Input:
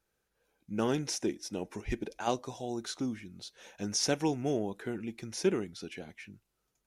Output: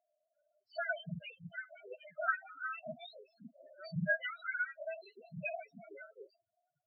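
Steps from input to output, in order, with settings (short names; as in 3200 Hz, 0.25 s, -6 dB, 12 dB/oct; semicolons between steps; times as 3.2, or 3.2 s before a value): spectrum mirrored in octaves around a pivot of 970 Hz; double band-pass 990 Hz, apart 1.1 oct; loudest bins only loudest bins 4; gain +12.5 dB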